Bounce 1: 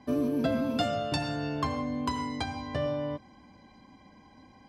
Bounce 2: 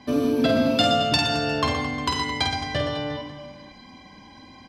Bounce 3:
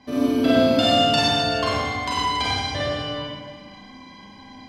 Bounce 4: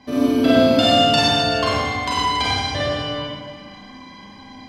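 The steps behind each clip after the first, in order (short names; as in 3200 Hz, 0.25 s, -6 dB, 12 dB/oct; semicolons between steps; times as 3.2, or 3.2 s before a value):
bell 3700 Hz +9 dB 1.8 oct; in parallel at -8 dB: soft clip -20.5 dBFS, distortion -17 dB; on the sum: reverse bouncing-ball echo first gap 50 ms, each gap 1.4×, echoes 5; gain +2 dB
Schroeder reverb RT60 0.99 s, combs from 31 ms, DRR -6 dB; gain -5 dB
narrowing echo 0.374 s, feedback 66%, band-pass 1500 Hz, level -23 dB; gain +3 dB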